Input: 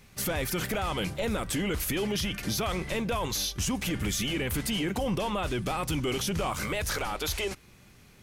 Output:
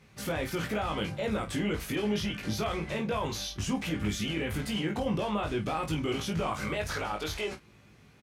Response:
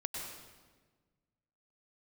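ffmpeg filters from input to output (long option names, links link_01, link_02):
-filter_complex "[0:a]highpass=64,aemphasis=mode=reproduction:type=50kf,asplit=2[link_01][link_02];[link_02]aecho=0:1:19|48:0.708|0.266[link_03];[link_01][link_03]amix=inputs=2:normalize=0,volume=-2.5dB"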